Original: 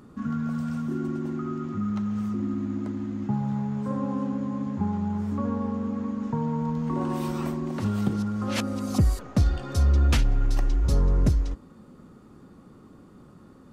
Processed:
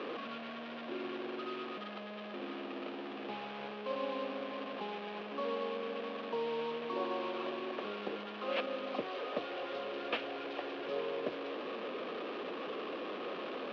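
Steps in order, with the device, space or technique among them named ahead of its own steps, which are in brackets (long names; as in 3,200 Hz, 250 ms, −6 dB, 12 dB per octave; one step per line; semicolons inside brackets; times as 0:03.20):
digital answering machine (band-pass filter 380–3,300 Hz; linear delta modulator 32 kbit/s, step −31 dBFS; loudspeaker in its box 430–3,000 Hz, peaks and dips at 470 Hz +4 dB, 890 Hz −9 dB, 1,400 Hz −8 dB, 2,000 Hz −9 dB)
level +1 dB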